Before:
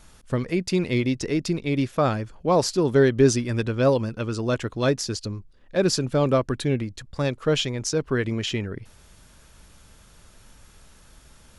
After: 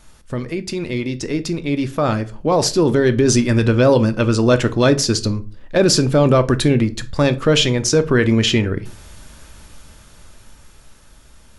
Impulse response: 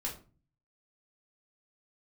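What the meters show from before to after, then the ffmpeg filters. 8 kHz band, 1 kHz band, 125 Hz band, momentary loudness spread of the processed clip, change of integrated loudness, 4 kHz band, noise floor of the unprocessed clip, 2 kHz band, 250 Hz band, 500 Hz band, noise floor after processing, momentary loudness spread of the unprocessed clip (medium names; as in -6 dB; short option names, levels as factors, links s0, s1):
+9.0 dB, +6.0 dB, +7.5 dB, 10 LU, +7.0 dB, +9.5 dB, -52 dBFS, +7.5 dB, +7.5 dB, +6.0 dB, -46 dBFS, 9 LU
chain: -filter_complex "[0:a]alimiter=limit=0.15:level=0:latency=1:release=22,dynaudnorm=f=530:g=9:m=2.82,asplit=2[s0][s1];[1:a]atrim=start_sample=2205,afade=t=out:st=0.26:d=0.01,atrim=end_sample=11907[s2];[s1][s2]afir=irnorm=-1:irlink=0,volume=0.398[s3];[s0][s3]amix=inputs=2:normalize=0"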